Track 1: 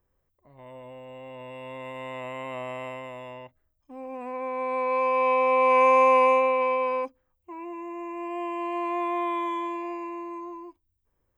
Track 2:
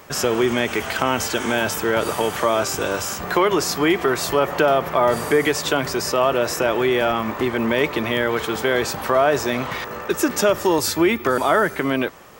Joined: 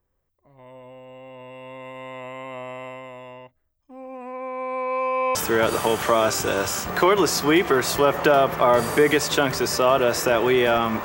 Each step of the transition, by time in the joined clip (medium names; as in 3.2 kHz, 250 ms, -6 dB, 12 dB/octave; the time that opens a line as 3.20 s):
track 1
5.35 s: go over to track 2 from 1.69 s